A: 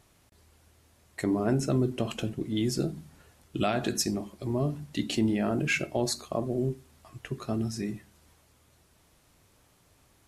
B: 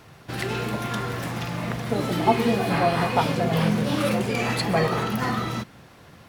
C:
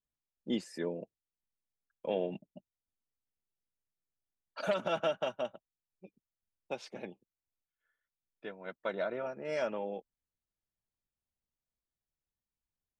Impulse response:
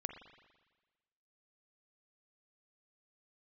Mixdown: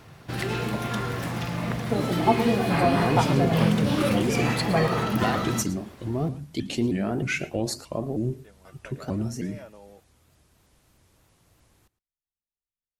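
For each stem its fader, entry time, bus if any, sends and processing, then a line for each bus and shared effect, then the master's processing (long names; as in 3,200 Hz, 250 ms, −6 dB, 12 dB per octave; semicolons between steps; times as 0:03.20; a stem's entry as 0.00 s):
−0.5 dB, 1.60 s, no send, echo send −19 dB, pitch modulation by a square or saw wave saw up 3.2 Hz, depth 250 cents
−1.5 dB, 0.00 s, no send, echo send −14.5 dB, no processing
−11.5 dB, 0.00 s, no send, no echo send, no processing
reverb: not used
echo: single-tap delay 112 ms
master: low-shelf EQ 210 Hz +4 dB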